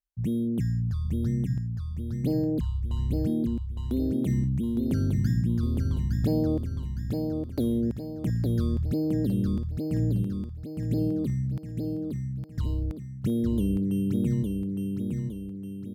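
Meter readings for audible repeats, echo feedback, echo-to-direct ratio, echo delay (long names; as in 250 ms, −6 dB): 5, 46%, −3.0 dB, 861 ms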